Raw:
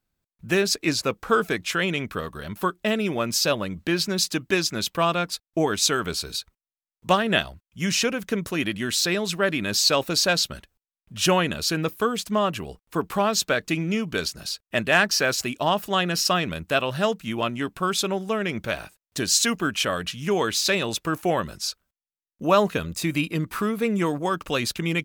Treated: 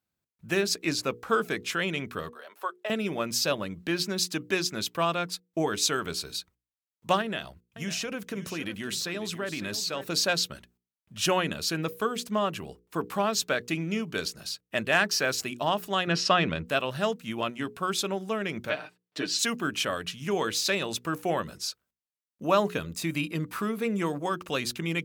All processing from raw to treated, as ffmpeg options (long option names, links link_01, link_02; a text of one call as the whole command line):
ffmpeg -i in.wav -filter_complex "[0:a]asettb=1/sr,asplit=3[link_01][link_02][link_03];[link_01]atrim=end=2.294[link_04];[link_02]atrim=start=2.29:end=2.9,asetpts=PTS-STARTPTS,afade=type=in:duration=0.004:curve=qsin,afade=type=out:start_time=0.606:duration=0.004:curve=qsin,highpass=frequency=500:width=0.5412,highpass=frequency=500:width=1.3066,highshelf=frequency=2000:gain=-8.5[link_05];[link_03]atrim=start=2.896[link_06];[link_04][link_05]acrossfade=duration=0.004:curve1=hsin:curve2=qsin[link_07];[link_07][link_06]acrossfade=duration=0.004:curve1=qsin:curve2=hsin,asettb=1/sr,asplit=3[link_08][link_09][link_10];[link_08]atrim=end=7.214[link_11];[link_09]atrim=start=7.21:end=10.06,asetpts=PTS-STARTPTS,afade=type=in:duration=0.004:curve=qsin,afade=type=out:start_time=2.846:duration=0.004:curve=qsin,acompressor=threshold=-24dB:ratio=4:attack=3.2:release=140:knee=1:detection=peak,aecho=1:1:551:0.251,atrim=end_sample=125685[link_12];[link_10]atrim=start=10.056[link_13];[link_11][link_12]acrossfade=duration=0.004:curve1=hsin:curve2=qsin[link_14];[link_14][link_13]acrossfade=duration=0.004:curve1=qsin:curve2=hsin,asettb=1/sr,asplit=3[link_15][link_16][link_17];[link_15]atrim=end=16.074[link_18];[link_16]atrim=start=16.07:end=16.66,asetpts=PTS-STARTPTS,afade=type=in:duration=0.004:curve=qsin,afade=type=out:start_time=0.586:duration=0.004:curve=qsin,lowpass=4000,acontrast=37[link_19];[link_17]atrim=start=16.656[link_20];[link_18][link_19]acrossfade=duration=0.004:curve1=hsin:curve2=qsin[link_21];[link_21][link_20]acrossfade=duration=0.004:curve1=qsin:curve2=hsin,asettb=1/sr,asplit=3[link_22][link_23][link_24];[link_22]atrim=end=18.694[link_25];[link_23]atrim=start=18.69:end=19.39,asetpts=PTS-STARTPTS,afade=type=in:duration=0.004:curve=qsin,afade=type=out:start_time=0.696:duration=0.004:curve=qsin,acrossover=split=180 5000:gain=0.0891 1 0.112[link_26][link_27][link_28];[link_26][link_27][link_28]amix=inputs=3:normalize=0,bandreject=frequency=6400:width=13,aecho=1:1:6.6:0.86,atrim=end_sample=30870[link_29];[link_24]atrim=start=19.386[link_30];[link_25][link_29]acrossfade=duration=0.004:curve1=hsin:curve2=qsin[link_31];[link_31][link_30]acrossfade=duration=0.004:curve1=qsin:curve2=hsin,highpass=86,bandreject=frequency=60:width_type=h:width=6,bandreject=frequency=120:width_type=h:width=6,bandreject=frequency=180:width_type=h:width=6,bandreject=frequency=240:width_type=h:width=6,bandreject=frequency=300:width_type=h:width=6,bandreject=frequency=360:width_type=h:width=6,bandreject=frequency=420:width_type=h:width=6,bandreject=frequency=480:width_type=h:width=6,volume=-4.5dB" out.wav